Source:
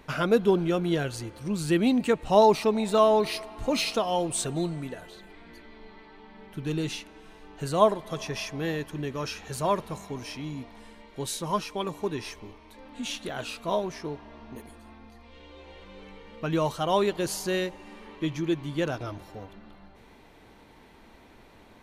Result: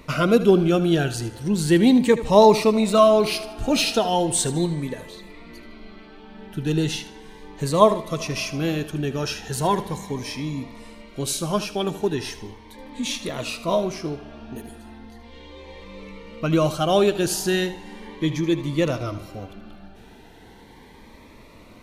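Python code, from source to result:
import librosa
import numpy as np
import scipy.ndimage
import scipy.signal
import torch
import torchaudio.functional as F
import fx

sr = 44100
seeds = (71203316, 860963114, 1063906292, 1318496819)

p1 = x + fx.echo_feedback(x, sr, ms=77, feedback_pct=37, wet_db=-14, dry=0)
p2 = fx.notch_cascade(p1, sr, direction='rising', hz=0.37)
y = F.gain(torch.from_numpy(p2), 7.5).numpy()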